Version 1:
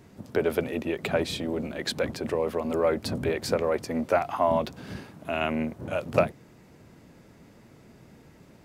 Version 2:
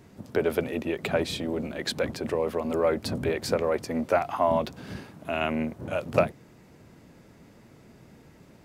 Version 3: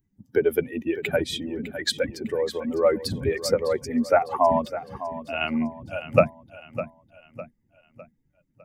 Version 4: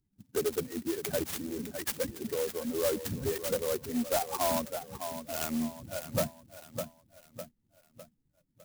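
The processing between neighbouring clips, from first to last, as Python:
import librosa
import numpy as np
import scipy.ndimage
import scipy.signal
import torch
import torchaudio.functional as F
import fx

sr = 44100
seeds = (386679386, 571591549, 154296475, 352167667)

y1 = x
y2 = fx.bin_expand(y1, sr, power=2.0)
y2 = fx.echo_feedback(y2, sr, ms=605, feedback_pct=41, wet_db=-13)
y2 = F.gain(torch.from_numpy(y2), 7.5).numpy()
y3 = 10.0 ** (-18.0 / 20.0) * np.tanh(y2 / 10.0 ** (-18.0 / 20.0))
y3 = fx.clock_jitter(y3, sr, seeds[0], jitter_ms=0.11)
y3 = F.gain(torch.from_numpy(y3), -5.5).numpy()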